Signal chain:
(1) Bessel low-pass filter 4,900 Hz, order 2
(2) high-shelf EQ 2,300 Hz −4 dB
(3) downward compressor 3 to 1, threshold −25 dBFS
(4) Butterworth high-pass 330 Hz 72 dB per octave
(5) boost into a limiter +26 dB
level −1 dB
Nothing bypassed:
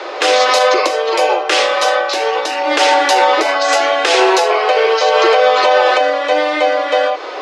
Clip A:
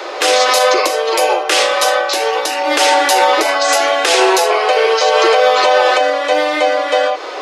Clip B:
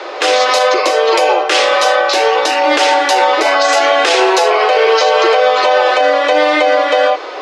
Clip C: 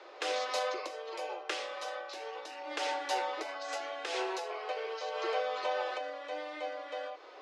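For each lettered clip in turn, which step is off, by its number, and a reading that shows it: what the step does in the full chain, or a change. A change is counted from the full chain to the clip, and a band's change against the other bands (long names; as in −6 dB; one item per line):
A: 1, 8 kHz band +5.5 dB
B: 3, change in crest factor −1.5 dB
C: 5, change in crest factor +7.0 dB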